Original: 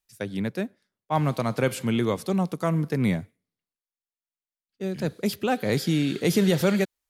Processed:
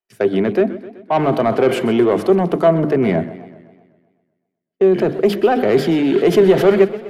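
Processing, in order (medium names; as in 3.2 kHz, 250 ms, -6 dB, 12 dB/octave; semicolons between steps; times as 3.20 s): hum notches 50/100/150/200/250/300 Hz; gate with hold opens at -41 dBFS; three-band isolator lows -14 dB, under 190 Hz, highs -19 dB, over 2.6 kHz; in parallel at -1 dB: compressor with a negative ratio -35 dBFS, ratio -1; on the sum: saturation -19 dBFS, distortion -15 dB; small resonant body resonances 390/660/3000 Hz, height 11 dB, ringing for 45 ms; modulated delay 127 ms, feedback 57%, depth 157 cents, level -15.5 dB; trim +8 dB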